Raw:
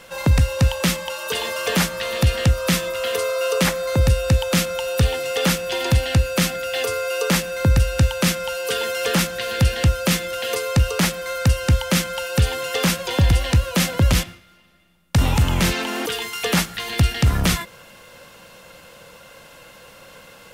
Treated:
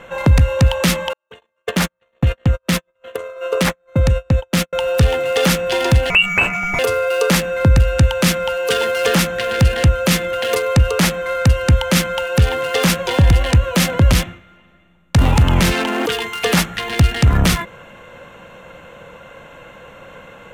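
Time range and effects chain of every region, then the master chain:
1.13–4.73 s: gate -21 dBFS, range -54 dB + compression 4:1, threshold -17 dBFS
6.10–6.79 s: upward compressor, threshold -21 dBFS + frequency inversion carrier 2.8 kHz
whole clip: local Wiener filter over 9 samples; peak limiter -11.5 dBFS; trim +7 dB

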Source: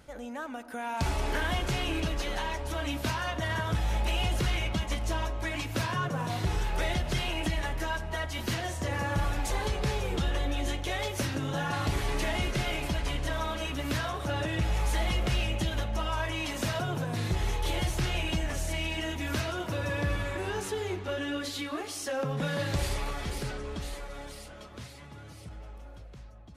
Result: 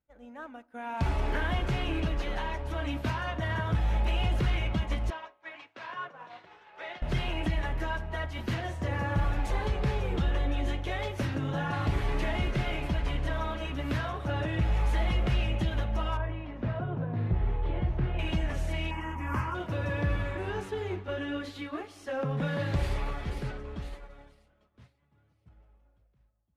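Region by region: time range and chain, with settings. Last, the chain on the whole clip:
5.10–7.02 s: Bessel high-pass 770 Hz + distance through air 130 m
16.17–18.19 s: tape spacing loss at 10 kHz 41 dB + doubling 17 ms -12.5 dB
18.91–19.55 s: high-order bell 800 Hz +15 dB 1.3 oct + static phaser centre 1.6 kHz, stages 4
whole clip: expander -32 dBFS; tone controls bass +3 dB, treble -13 dB; trim -1 dB

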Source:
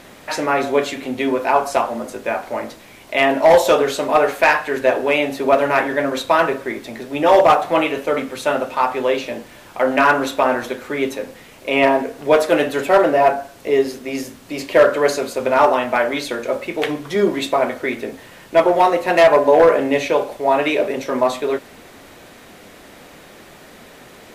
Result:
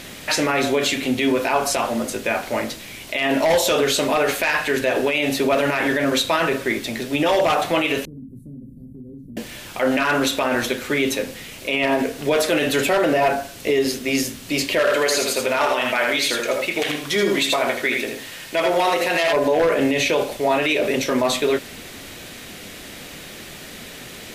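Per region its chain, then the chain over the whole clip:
8.05–9.37 s: inverse Chebyshev band-stop 940–2800 Hz, stop band 80 dB + compression 4:1, threshold -38 dBFS + distance through air 500 m
14.79–19.33 s: bass shelf 380 Hz -9 dB + delay 80 ms -5.5 dB
whole clip: FFT filter 140 Hz 0 dB, 960 Hz -8 dB, 2.9 kHz +3 dB; peak limiter -16.5 dBFS; trim +6.5 dB

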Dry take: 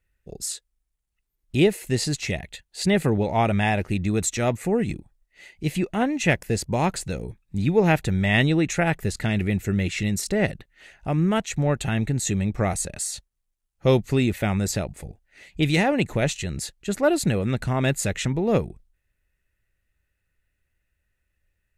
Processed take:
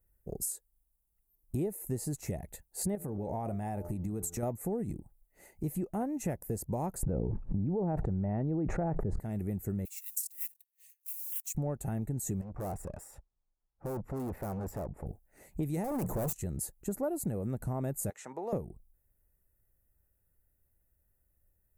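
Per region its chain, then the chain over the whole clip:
2.95–4.43 s: de-hum 86.41 Hz, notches 17 + compression 5:1, threshold -26 dBFS
7.03–9.20 s: low-pass 1.1 kHz + level flattener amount 100%
9.85–11.55 s: block-companded coder 5-bit + steep high-pass 2.5 kHz + transient shaper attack +2 dB, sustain -11 dB
12.41–15.06 s: Savitzky-Golay filter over 25 samples + peaking EQ 1.1 kHz +5 dB 1.7 oct + valve stage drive 33 dB, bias 0.55
15.84–16.33 s: hum notches 60/120/180 Hz + waveshaping leveller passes 2 + overload inside the chain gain 23 dB
18.10–18.53 s: high-pass 830 Hz + distance through air 76 m + three bands compressed up and down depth 70%
whole clip: FFT filter 840 Hz 0 dB, 3.3 kHz -25 dB, 13 kHz +12 dB; compression 4:1, threshold -33 dBFS

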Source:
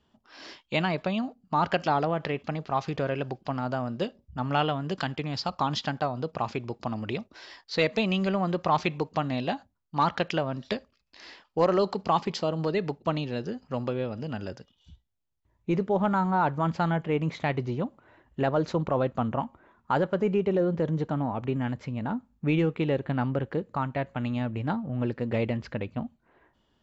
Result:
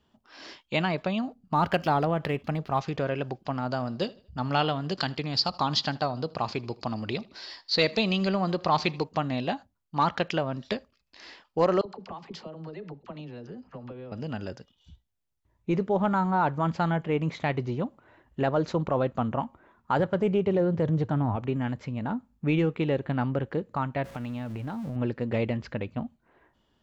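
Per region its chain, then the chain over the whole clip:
1.27–2.81 s: median filter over 5 samples + bass shelf 140 Hz +7.5 dB
3.70–9.04 s: peaking EQ 4.5 kHz +11.5 dB 0.43 oct + feedback delay 78 ms, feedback 38%, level -23 dB
11.81–14.12 s: low-pass 2.9 kHz 6 dB/octave + compression, threshold -37 dBFS + phase dispersion lows, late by 46 ms, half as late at 520 Hz
19.99–21.36 s: peaking EQ 110 Hz +12.5 dB 0.55 oct + loudspeaker Doppler distortion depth 0.12 ms
24.04–24.96 s: jump at every zero crossing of -42 dBFS + compression 10:1, threshold -30 dBFS
whole clip: none

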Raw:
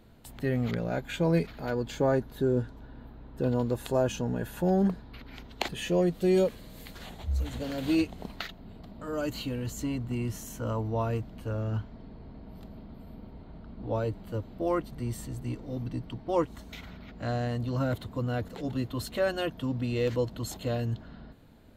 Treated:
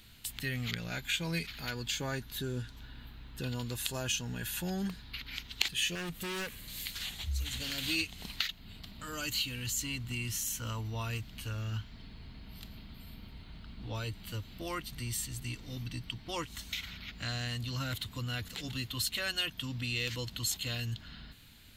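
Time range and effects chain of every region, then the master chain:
5.95–6.68 s: peaking EQ 4.5 kHz -10 dB 1.6 oct + hard clipper -27 dBFS
whole clip: FFT filter 100 Hz 0 dB, 580 Hz -12 dB, 2.8 kHz +14 dB; compression 1.5:1, threshold -38 dBFS; trim -1 dB

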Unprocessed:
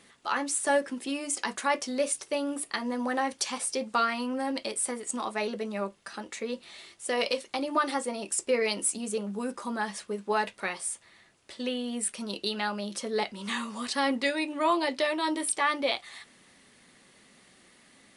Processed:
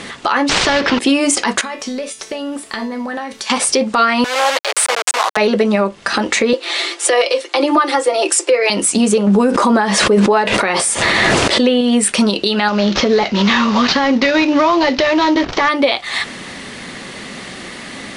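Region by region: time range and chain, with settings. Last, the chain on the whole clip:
0.49–0.99 s: CVSD coder 64 kbps + low-pass 4.8 kHz 24 dB/octave + spectrum-flattening compressor 2:1
1.61–3.50 s: word length cut 10-bit, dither triangular + compression 12:1, threshold -36 dBFS + feedback comb 220 Hz, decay 0.42 s, mix 80%
4.24–5.37 s: send-on-delta sampling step -30 dBFS + Bessel high-pass 790 Hz, order 6
6.53–8.70 s: steep high-pass 270 Hz 96 dB/octave + comb 5.8 ms, depth 44%
9.27–11.81 s: peaking EQ 500 Hz +4.5 dB 2.3 oct + swell ahead of each attack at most 26 dB/s
12.68–15.69 s: CVSD coder 32 kbps + compression 2.5:1, threshold -31 dBFS
whole clip: Bessel low-pass 5.7 kHz, order 2; compression 6:1, threshold -39 dBFS; loudness maximiser +31.5 dB; trim -2.5 dB

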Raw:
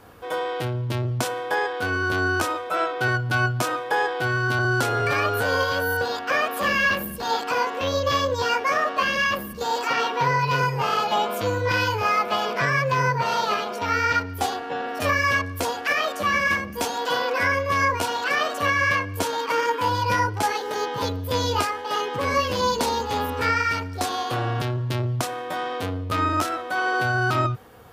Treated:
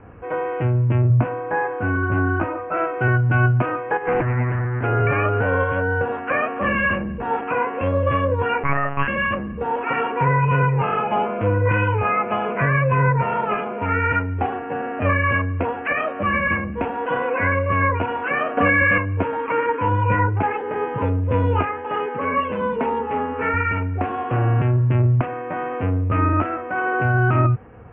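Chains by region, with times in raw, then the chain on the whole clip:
1.08–2.72 s: low-pass 1.5 kHz 6 dB/octave + peaking EQ 440 Hz -10 dB 0.21 oct + doubling 18 ms -5 dB
3.97–4.84 s: compressor with a negative ratio -27 dBFS, ratio -0.5 + bass shelf 270 Hz +7 dB + loudspeaker Doppler distortion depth 0.83 ms
8.63–9.08 s: bass shelf 490 Hz -6 dB + monotone LPC vocoder at 8 kHz 140 Hz
18.57–18.98 s: comb 4.1 ms, depth 90% + level flattener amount 70%
22.06–23.54 s: high-pass 350 Hz 6 dB/octave + distance through air 77 m + comb 4.6 ms, depth 47%
whole clip: steep low-pass 2.7 kHz 72 dB/octave; bass shelf 320 Hz +10.5 dB

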